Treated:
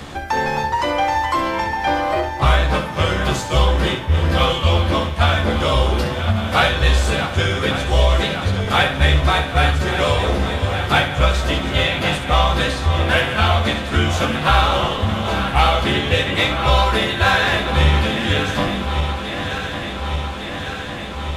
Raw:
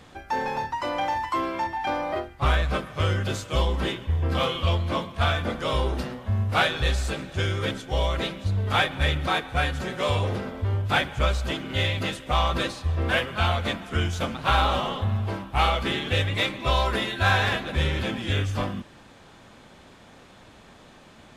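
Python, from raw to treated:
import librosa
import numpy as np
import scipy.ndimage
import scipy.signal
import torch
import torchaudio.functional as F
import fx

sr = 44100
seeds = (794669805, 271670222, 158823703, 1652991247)

y = fx.reverse_delay_fb(x, sr, ms=576, feedback_pct=79, wet_db=-12)
y = fx.room_early_taps(y, sr, ms=(14, 67), db=(-5.5, -8.0))
y = fx.band_squash(y, sr, depth_pct=40)
y = y * 10.0 ** (6.0 / 20.0)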